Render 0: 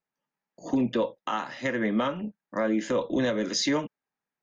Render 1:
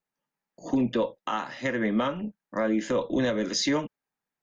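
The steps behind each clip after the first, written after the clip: bass shelf 64 Hz +6.5 dB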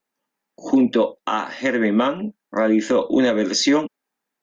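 resonant low shelf 180 Hz -9.5 dB, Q 1.5; trim +7 dB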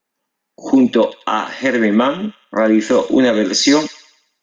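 feedback echo behind a high-pass 92 ms, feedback 43%, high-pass 2.6 kHz, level -6 dB; trim +4.5 dB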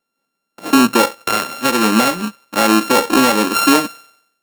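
sorted samples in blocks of 32 samples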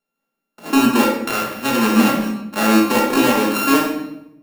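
simulated room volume 250 m³, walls mixed, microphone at 1.4 m; trim -6.5 dB

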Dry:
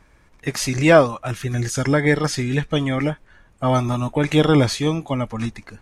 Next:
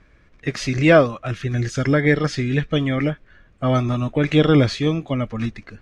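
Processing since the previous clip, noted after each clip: low-pass 4.2 kHz 12 dB/octave; peaking EQ 890 Hz -11 dB 0.44 oct; trim +1 dB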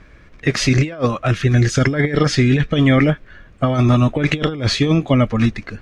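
compressor with a negative ratio -20 dBFS, ratio -0.5; trim +6 dB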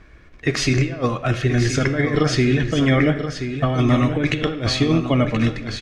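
delay 1028 ms -9 dB; on a send at -8 dB: reverberation RT60 1.1 s, pre-delay 3 ms; on the sum: trim -3 dB

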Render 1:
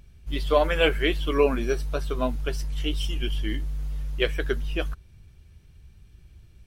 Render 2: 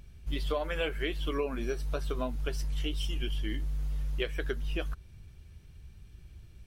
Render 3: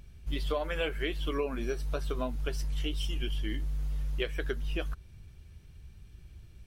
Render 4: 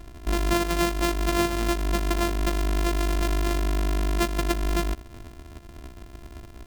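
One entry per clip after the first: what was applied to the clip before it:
compression 6:1, threshold -29 dBFS, peak gain reduction 13.5 dB
no audible change
sorted samples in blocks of 128 samples; trim +8 dB

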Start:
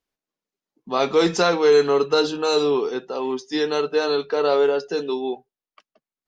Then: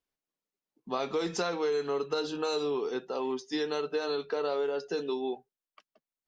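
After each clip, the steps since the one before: compression, threshold -22 dBFS, peak gain reduction 10 dB; trim -5.5 dB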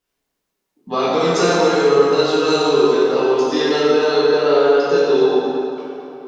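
plate-style reverb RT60 3 s, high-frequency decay 0.65×, DRR -9 dB; trim +7 dB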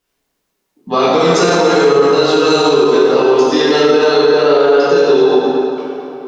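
loudness maximiser +7.5 dB; trim -1 dB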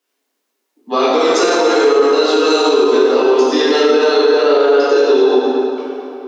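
Chebyshev high-pass 240 Hz, order 5; trim -1 dB

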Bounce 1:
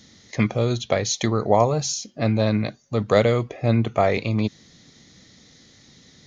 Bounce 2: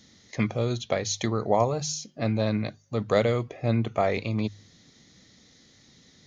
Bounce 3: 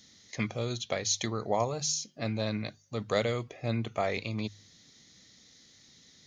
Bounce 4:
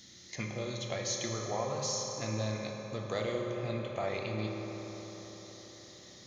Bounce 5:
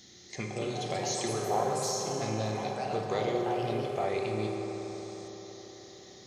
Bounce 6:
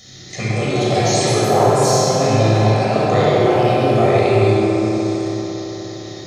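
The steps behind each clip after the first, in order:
de-hum 50.8 Hz, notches 3; trim -5 dB
treble shelf 2.1 kHz +9 dB; trim -7 dB
compression 1.5:1, threshold -53 dBFS, peak gain reduction 11 dB; reverberation RT60 5.1 s, pre-delay 3 ms, DRR -1 dB; trim +2.5 dB
ever faster or slower copies 303 ms, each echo +4 st, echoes 3, each echo -6 dB; small resonant body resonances 400/750 Hz, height 11 dB, ringing for 45 ms
simulated room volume 3700 m³, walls mixed, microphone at 6.3 m; trim +8 dB

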